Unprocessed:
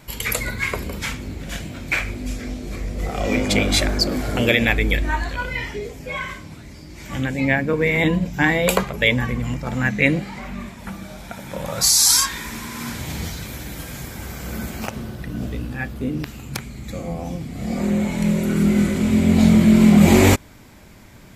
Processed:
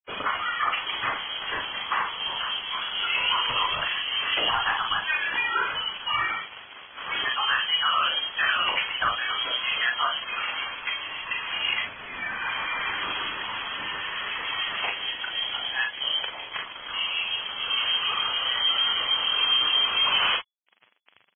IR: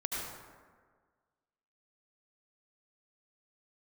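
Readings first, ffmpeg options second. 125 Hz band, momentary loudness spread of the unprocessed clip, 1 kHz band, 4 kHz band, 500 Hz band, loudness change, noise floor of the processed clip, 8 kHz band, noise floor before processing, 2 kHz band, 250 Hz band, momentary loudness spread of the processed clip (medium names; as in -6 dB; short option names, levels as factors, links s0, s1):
-29.5 dB, 19 LU, +2.5 dB, +4.5 dB, -16.5 dB, -5.5 dB, -47 dBFS, under -40 dB, -42 dBFS, -2.0 dB, -31.0 dB, 9 LU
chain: -filter_complex "[0:a]highpass=f=750:p=1,flanger=delay=0.8:depth=7.9:regen=-25:speed=1.1:shape=sinusoidal,acompressor=threshold=0.0178:ratio=2.5,acrossover=split=1500[s0][s1];[s0]aeval=exprs='val(0)*(1-0.5/2+0.5/2*cos(2*PI*6.7*n/s))':c=same[s2];[s1]aeval=exprs='val(0)*(1-0.5/2-0.5/2*cos(2*PI*6.7*n/s))':c=same[s3];[s2][s3]amix=inputs=2:normalize=0,acontrast=31,acrusher=bits=6:mix=0:aa=0.000001,asoftclip=type=tanh:threshold=0.0531,aecho=1:1:40|50:0.531|0.355,lowpass=f=2900:t=q:w=0.5098,lowpass=f=2900:t=q:w=0.6013,lowpass=f=2900:t=q:w=0.9,lowpass=f=2900:t=q:w=2.563,afreqshift=-3400,volume=2.51" -ar 22050 -c:a libvorbis -b:a 16k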